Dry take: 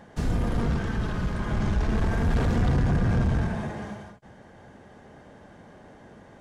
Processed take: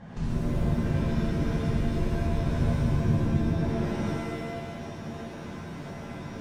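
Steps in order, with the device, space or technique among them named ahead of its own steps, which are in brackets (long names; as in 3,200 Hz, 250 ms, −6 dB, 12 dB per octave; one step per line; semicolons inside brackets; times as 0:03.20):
jukebox (low-pass filter 6,300 Hz; low shelf with overshoot 270 Hz +6 dB, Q 1.5; downward compressor 5 to 1, threshold −32 dBFS, peak gain reduction 17 dB)
reverb with rising layers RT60 1.5 s, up +7 semitones, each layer −2 dB, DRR −6.5 dB
level −3.5 dB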